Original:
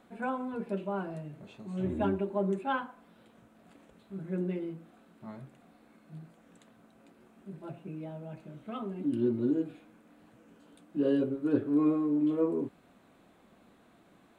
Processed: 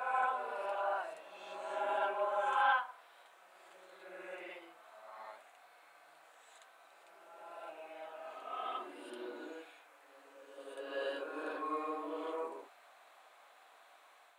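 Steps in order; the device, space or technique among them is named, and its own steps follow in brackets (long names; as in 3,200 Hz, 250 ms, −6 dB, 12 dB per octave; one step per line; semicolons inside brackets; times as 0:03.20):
ghost voice (reversed playback; convolution reverb RT60 1.6 s, pre-delay 38 ms, DRR −4 dB; reversed playback; high-pass filter 690 Hz 24 dB per octave)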